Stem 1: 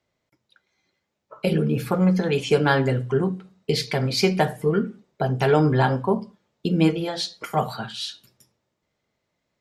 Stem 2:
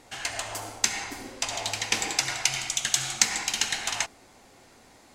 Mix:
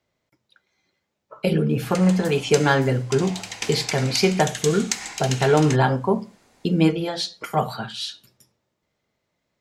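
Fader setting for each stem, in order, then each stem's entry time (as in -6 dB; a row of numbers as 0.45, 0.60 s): +1.0, -4.0 dB; 0.00, 1.70 s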